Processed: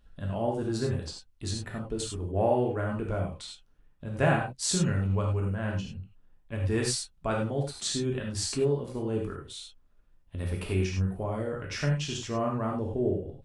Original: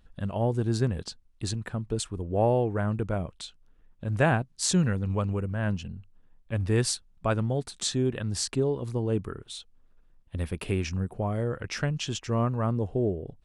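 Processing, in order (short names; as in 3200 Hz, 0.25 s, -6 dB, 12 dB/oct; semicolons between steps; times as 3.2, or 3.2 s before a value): non-linear reverb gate 0.12 s flat, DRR -1.5 dB; gain -4.5 dB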